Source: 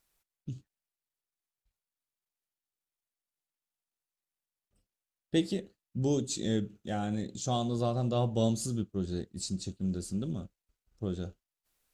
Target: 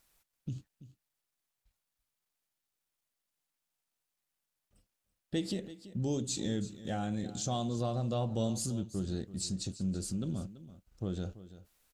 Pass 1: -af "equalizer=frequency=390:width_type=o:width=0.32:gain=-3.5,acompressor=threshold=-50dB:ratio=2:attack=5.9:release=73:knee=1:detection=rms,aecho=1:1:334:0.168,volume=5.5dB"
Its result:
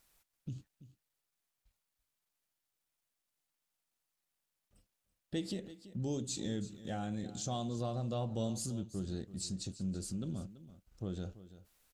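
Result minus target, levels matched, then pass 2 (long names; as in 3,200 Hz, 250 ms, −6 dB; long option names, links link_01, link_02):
downward compressor: peak gain reduction +4 dB
-af "equalizer=frequency=390:width_type=o:width=0.32:gain=-3.5,acompressor=threshold=-42.5dB:ratio=2:attack=5.9:release=73:knee=1:detection=rms,aecho=1:1:334:0.168,volume=5.5dB"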